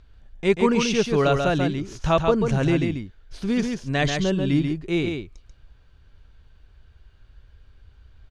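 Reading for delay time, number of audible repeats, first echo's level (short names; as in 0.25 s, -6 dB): 0.138 s, 1, -5.0 dB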